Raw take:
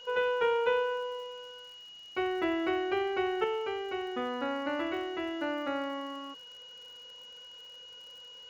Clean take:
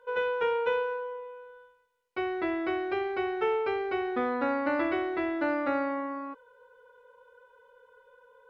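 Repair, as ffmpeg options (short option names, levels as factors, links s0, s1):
-af "adeclick=t=4,bandreject=f=2900:w=30,agate=range=0.0891:threshold=0.00794,asetnsamples=n=441:p=0,asendcmd='3.44 volume volume 5dB',volume=1"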